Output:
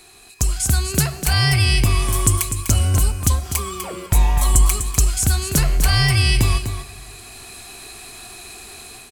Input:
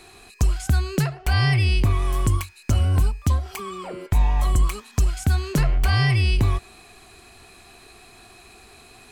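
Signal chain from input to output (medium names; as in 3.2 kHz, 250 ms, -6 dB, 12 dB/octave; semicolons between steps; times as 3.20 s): treble shelf 4.3 kHz +11 dB; level rider gain up to 9 dB; dynamic bell 9 kHz, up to +6 dB, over -36 dBFS, Q 0.78; on a send: delay 249 ms -9 dB; on the sum: plate-style reverb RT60 2.5 s, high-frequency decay 0.9×, DRR 17 dB; trim -3.5 dB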